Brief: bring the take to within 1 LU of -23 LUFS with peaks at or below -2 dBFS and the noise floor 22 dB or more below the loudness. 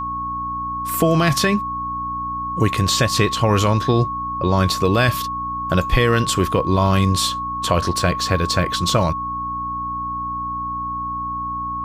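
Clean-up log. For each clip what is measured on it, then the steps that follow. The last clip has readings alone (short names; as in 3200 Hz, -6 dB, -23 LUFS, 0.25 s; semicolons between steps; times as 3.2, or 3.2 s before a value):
hum 60 Hz; harmonics up to 300 Hz; hum level -33 dBFS; steady tone 1100 Hz; tone level -23 dBFS; loudness -20.0 LUFS; peak -4.5 dBFS; loudness target -23.0 LUFS
-> de-hum 60 Hz, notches 5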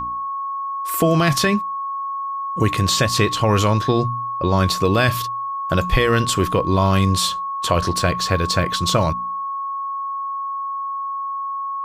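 hum none; steady tone 1100 Hz; tone level -23 dBFS
-> notch 1100 Hz, Q 30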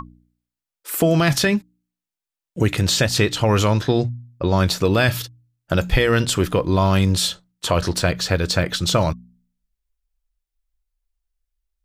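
steady tone none; loudness -19.5 LUFS; peak -5.0 dBFS; loudness target -23.0 LUFS
-> gain -3.5 dB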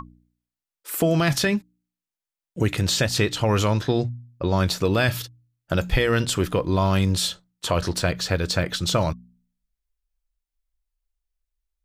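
loudness -23.0 LUFS; peak -8.5 dBFS; noise floor -91 dBFS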